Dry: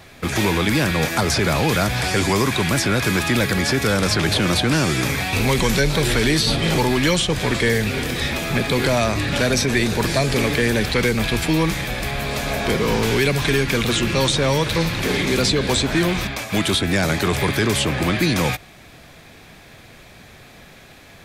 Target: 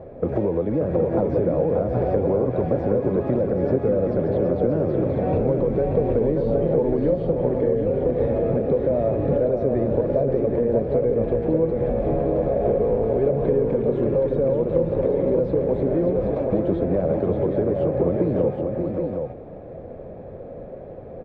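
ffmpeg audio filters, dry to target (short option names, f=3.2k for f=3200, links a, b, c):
-af "lowpass=f=530:t=q:w=4.9,acompressor=threshold=-23dB:ratio=6,aecho=1:1:581|771:0.531|0.531,volume=3dB"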